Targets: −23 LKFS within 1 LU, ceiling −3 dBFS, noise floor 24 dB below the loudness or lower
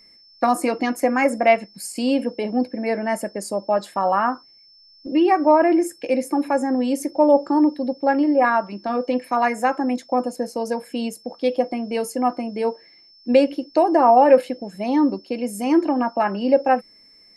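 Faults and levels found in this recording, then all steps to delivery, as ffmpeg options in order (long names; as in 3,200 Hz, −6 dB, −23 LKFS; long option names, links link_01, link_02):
interfering tone 5,300 Hz; level of the tone −49 dBFS; integrated loudness −20.5 LKFS; sample peak −3.5 dBFS; target loudness −23.0 LKFS
→ -af "bandreject=frequency=5300:width=30"
-af "volume=-2.5dB"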